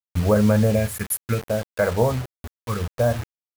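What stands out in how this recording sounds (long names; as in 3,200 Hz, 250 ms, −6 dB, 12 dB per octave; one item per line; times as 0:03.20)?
phaser sweep stages 4, 0.67 Hz, lowest notch 580–4,700 Hz
a quantiser's noise floor 6 bits, dither none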